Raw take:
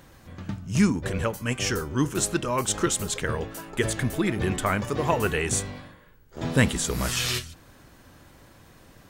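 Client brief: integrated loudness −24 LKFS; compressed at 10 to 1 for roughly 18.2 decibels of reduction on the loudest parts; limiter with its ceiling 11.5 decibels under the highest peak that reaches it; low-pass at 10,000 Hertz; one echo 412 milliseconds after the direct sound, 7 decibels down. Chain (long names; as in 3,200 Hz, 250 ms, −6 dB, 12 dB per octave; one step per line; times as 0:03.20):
low-pass filter 10,000 Hz
downward compressor 10 to 1, threshold −34 dBFS
brickwall limiter −32.5 dBFS
single-tap delay 412 ms −7 dB
level +18.5 dB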